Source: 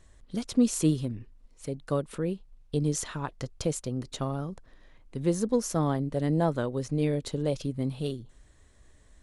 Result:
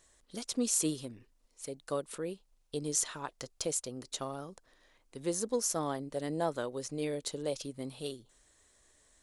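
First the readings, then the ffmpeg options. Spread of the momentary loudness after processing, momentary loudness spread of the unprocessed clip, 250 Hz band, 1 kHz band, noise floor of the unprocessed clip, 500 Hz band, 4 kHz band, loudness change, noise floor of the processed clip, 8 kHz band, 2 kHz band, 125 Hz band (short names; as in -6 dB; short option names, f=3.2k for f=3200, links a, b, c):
14 LU, 13 LU, -10.0 dB, -4.0 dB, -58 dBFS, -5.0 dB, 0.0 dB, -5.5 dB, -70 dBFS, +3.5 dB, -3.5 dB, -15.0 dB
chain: -af "bass=f=250:g=-13,treble=f=4k:g=8,volume=-4dB"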